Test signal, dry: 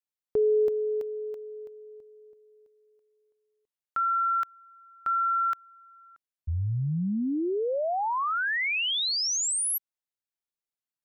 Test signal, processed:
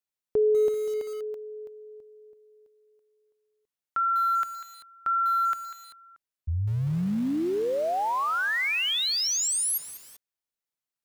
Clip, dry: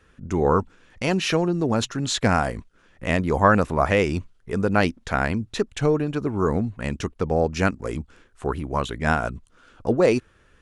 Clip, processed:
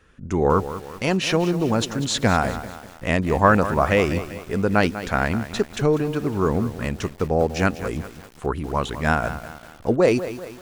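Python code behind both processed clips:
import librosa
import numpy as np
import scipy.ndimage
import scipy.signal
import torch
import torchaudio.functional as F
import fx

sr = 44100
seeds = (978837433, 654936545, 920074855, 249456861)

y = fx.echo_crushed(x, sr, ms=195, feedback_pct=55, bits=6, wet_db=-12.0)
y = y * librosa.db_to_amplitude(1.0)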